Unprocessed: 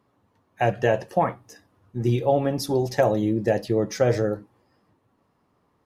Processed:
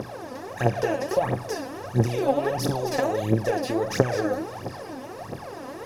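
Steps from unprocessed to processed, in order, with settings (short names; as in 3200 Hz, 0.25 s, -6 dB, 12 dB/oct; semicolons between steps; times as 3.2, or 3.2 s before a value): per-bin compression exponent 0.4; compressor, threshold -17 dBFS, peak gain reduction 7 dB; phaser 1.5 Hz, delay 4.1 ms, feedback 78%; gain -6.5 dB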